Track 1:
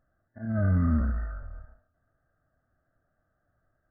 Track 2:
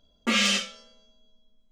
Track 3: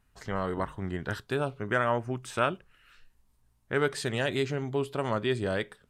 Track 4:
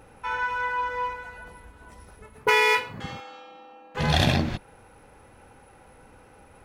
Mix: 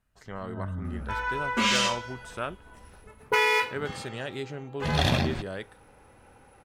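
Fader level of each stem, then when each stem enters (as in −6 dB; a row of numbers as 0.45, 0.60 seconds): −11.0, −2.0, −6.5, −3.0 decibels; 0.00, 1.30, 0.00, 0.85 seconds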